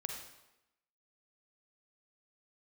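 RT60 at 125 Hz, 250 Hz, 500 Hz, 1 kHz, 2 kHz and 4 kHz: 0.80, 0.95, 0.95, 0.90, 0.85, 0.80 s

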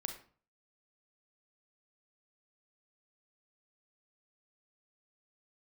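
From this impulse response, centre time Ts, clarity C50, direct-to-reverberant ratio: 16 ms, 7.5 dB, 5.0 dB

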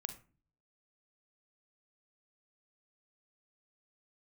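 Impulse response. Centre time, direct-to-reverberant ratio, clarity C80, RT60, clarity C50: 8 ms, 8.0 dB, 17.5 dB, 0.40 s, 12.0 dB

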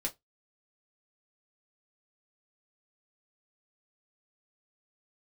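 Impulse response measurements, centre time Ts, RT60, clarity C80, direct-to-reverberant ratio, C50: 9 ms, 0.15 s, 33.0 dB, -0.5 dB, 22.5 dB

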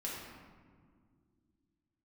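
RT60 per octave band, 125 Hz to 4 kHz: 2.9, 3.3, 2.4, 1.7, 1.3, 0.90 s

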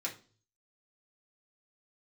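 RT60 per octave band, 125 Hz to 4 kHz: 0.85, 0.50, 0.45, 0.35, 0.30, 0.40 s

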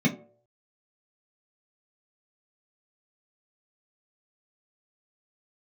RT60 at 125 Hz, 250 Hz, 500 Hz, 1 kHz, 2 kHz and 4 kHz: 0.40, 0.40, 0.65, 0.50, 0.30, 0.20 s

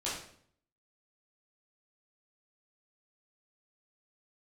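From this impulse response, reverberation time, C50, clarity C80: 0.60 s, 2.5 dB, 7.0 dB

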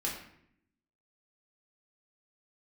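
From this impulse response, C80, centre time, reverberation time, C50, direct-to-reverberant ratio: 7.5 dB, 37 ms, 0.70 s, 4.5 dB, -3.5 dB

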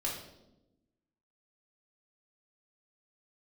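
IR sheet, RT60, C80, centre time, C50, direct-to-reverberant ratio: 0.95 s, 7.0 dB, 43 ms, 4.0 dB, -4.5 dB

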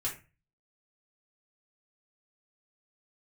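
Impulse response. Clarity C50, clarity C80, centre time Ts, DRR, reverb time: 9.0 dB, 15.0 dB, 22 ms, -5.5 dB, 0.30 s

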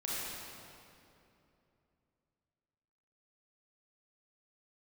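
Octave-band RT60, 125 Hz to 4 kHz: 3.5, 3.3, 3.0, 2.6, 2.3, 1.9 s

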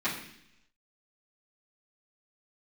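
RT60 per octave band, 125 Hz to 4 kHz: 0.90, 0.90, 0.75, 0.70, 0.95, 0.90 s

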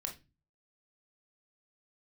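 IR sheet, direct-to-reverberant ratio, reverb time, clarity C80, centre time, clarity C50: 2.0 dB, not exponential, 19.5 dB, 14 ms, 11.5 dB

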